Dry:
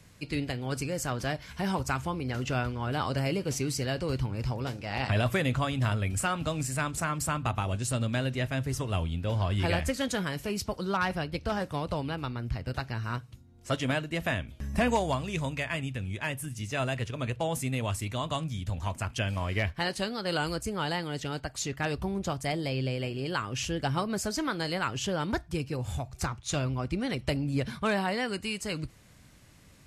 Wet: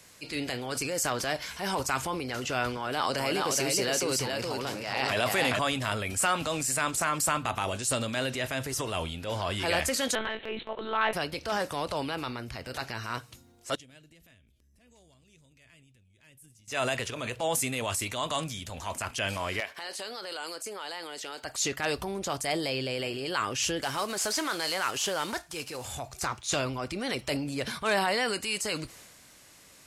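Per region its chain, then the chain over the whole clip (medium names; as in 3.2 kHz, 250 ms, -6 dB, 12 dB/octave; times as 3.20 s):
2.77–5.59 s: high-pass 120 Hz + delay 419 ms -3.5 dB
10.15–11.13 s: high-pass 170 Hz + monotone LPC vocoder at 8 kHz 220 Hz
13.75–16.68 s: amplifier tone stack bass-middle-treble 10-0-1 + compression 12:1, threshold -51 dBFS
19.60–21.44 s: high-pass 340 Hz + compression 4:1, threshold -39 dBFS
23.82–25.85 s: CVSD coder 64 kbps + bass shelf 390 Hz -8.5 dB
whole clip: tone controls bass -15 dB, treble +5 dB; transient shaper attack -6 dB, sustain +5 dB; trim +4 dB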